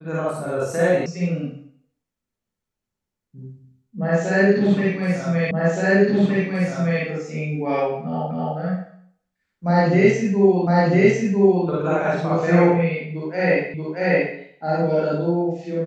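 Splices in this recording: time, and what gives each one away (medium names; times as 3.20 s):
1.06 s: sound stops dead
5.51 s: repeat of the last 1.52 s
8.31 s: repeat of the last 0.26 s
10.67 s: repeat of the last 1 s
13.74 s: repeat of the last 0.63 s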